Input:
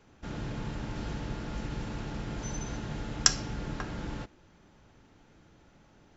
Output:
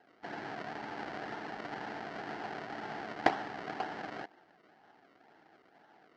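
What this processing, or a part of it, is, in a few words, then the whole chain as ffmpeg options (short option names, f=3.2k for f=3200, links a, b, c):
circuit-bent sampling toy: -af "acrusher=samples=36:mix=1:aa=0.000001:lfo=1:lforange=36:lforate=2,highpass=480,equalizer=f=540:t=q:w=4:g=-9,equalizer=f=760:t=q:w=4:g=7,equalizer=f=1.1k:t=q:w=4:g=-7,equalizer=f=1.7k:t=q:w=4:g=4,equalizer=f=2.5k:t=q:w=4:g=-7,equalizer=f=3.6k:t=q:w=4:g=-9,lowpass=f=4.1k:w=0.5412,lowpass=f=4.1k:w=1.3066,volume=4.5dB"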